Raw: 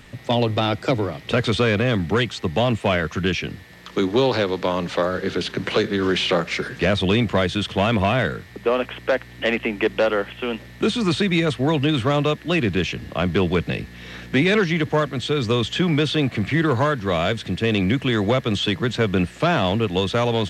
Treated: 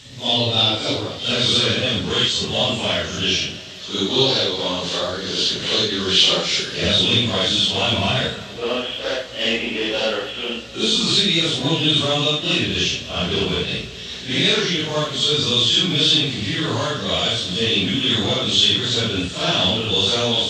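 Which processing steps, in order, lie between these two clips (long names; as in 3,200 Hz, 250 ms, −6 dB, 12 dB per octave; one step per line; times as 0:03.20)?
random phases in long frames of 200 ms
flat-topped bell 4,800 Hz +15.5 dB
on a send: convolution reverb RT60 4.1 s, pre-delay 6 ms, DRR 12 dB
on the sum: level −3 dB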